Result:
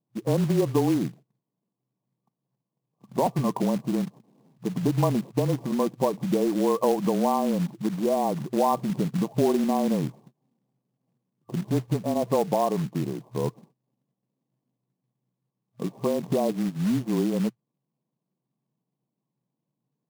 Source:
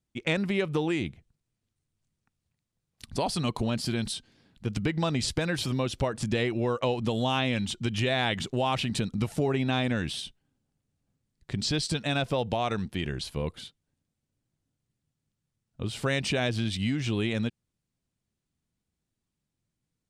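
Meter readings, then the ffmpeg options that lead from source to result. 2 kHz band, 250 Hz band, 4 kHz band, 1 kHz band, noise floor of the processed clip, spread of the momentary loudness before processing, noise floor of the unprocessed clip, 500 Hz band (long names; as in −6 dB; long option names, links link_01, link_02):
−12.0 dB, +5.0 dB, −11.0 dB, +5.0 dB, −85 dBFS, 8 LU, −84 dBFS, +5.0 dB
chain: -af "afftfilt=real='re*between(b*sr/4096,150,1200)':imag='im*between(b*sr/4096,150,1200)':win_size=4096:overlap=0.75,afreqshift=-25,acrusher=bits=4:mode=log:mix=0:aa=0.000001,volume=5.5dB"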